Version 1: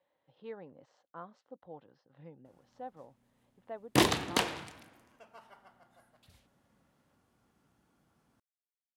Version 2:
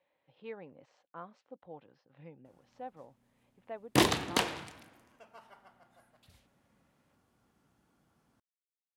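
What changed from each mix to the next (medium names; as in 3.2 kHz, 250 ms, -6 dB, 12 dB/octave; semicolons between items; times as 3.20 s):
speech: add peaking EQ 2.4 kHz +9.5 dB 0.4 oct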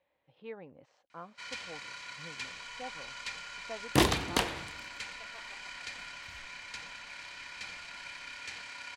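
first sound: unmuted; reverb: on, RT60 0.30 s; master: remove high-pass 110 Hz 12 dB/octave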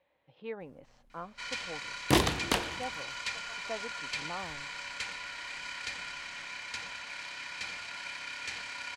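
speech +4.0 dB; first sound +4.0 dB; second sound: entry -1.85 s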